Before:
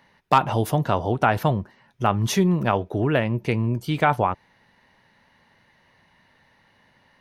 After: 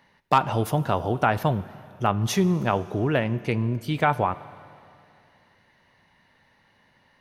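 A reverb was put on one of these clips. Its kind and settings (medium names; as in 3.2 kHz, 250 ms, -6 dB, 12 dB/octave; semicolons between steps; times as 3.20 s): Schroeder reverb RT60 2.6 s, combs from 32 ms, DRR 17 dB; trim -2 dB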